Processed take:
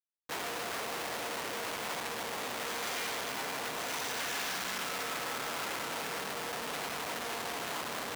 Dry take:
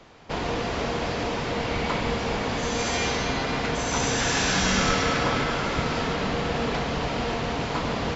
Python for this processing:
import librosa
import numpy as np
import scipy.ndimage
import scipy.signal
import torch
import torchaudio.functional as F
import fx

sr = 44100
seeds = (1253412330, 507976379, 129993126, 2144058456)

y = fx.rider(x, sr, range_db=5, speed_s=0.5)
y = fx.quant_dither(y, sr, seeds[0], bits=8, dither='triangular')
y = fx.schmitt(y, sr, flips_db=-30.5)
y = fx.highpass(y, sr, hz=890.0, slope=6)
y = F.gain(torch.from_numpy(y), -7.0).numpy()